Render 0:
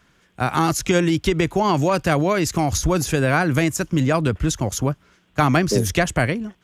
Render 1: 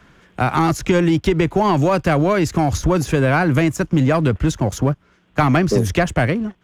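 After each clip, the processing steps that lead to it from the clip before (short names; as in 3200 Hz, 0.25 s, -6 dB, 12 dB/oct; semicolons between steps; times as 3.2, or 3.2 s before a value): high shelf 3400 Hz -10.5 dB; sample leveller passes 1; three-band squash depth 40%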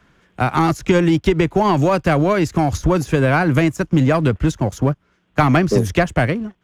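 upward expander 1.5:1, over -27 dBFS; gain +2 dB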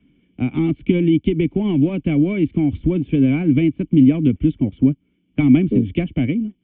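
vocal tract filter i; gain +8 dB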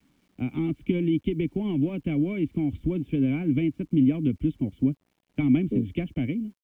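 bit-crush 10-bit; gain -8.5 dB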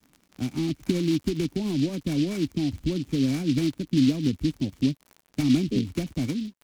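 crackle 62/s -36 dBFS; noise-modulated delay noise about 3500 Hz, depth 0.072 ms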